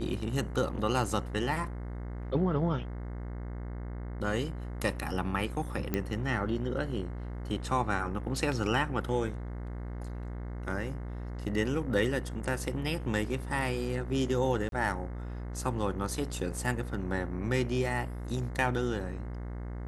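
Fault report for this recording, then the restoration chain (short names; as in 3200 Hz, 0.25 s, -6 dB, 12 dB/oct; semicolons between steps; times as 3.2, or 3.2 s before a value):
buzz 60 Hz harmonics 36 -38 dBFS
5.94 pop -16 dBFS
14.69–14.72 gap 32 ms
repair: de-click; de-hum 60 Hz, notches 36; interpolate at 14.69, 32 ms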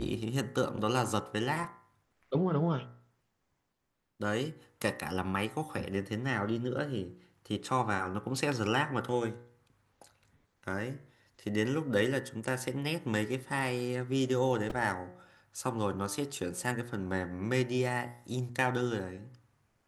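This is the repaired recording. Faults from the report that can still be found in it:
none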